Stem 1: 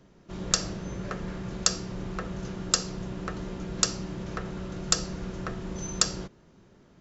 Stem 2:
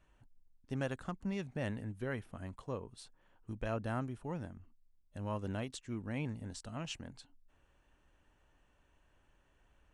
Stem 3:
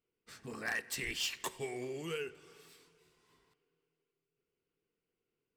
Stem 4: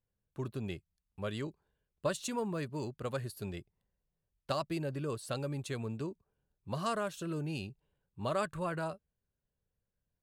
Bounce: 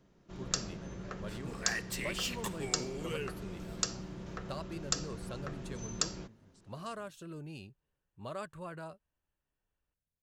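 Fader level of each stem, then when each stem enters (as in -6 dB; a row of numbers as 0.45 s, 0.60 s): -8.5 dB, -19.0 dB, -0.5 dB, -8.0 dB; 0.00 s, 0.00 s, 1.00 s, 0.00 s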